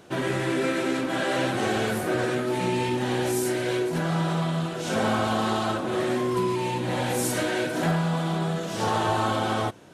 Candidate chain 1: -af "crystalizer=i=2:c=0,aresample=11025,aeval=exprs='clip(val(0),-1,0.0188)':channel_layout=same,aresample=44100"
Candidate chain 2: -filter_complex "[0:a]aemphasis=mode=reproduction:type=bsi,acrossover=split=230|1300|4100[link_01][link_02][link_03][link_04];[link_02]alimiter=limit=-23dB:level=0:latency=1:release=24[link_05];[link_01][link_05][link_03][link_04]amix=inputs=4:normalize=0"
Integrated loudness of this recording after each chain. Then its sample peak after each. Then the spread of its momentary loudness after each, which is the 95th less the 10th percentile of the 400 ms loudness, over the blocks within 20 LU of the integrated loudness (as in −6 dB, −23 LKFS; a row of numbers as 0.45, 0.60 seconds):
−28.5, −24.0 LKFS; −12.5, −11.5 dBFS; 3, 5 LU